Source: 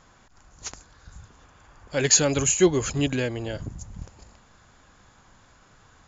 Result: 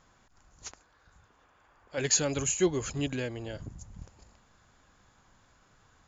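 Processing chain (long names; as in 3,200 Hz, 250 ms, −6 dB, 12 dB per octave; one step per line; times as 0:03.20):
0:00.71–0:01.98: bass and treble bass −10 dB, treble −9 dB
level −7.5 dB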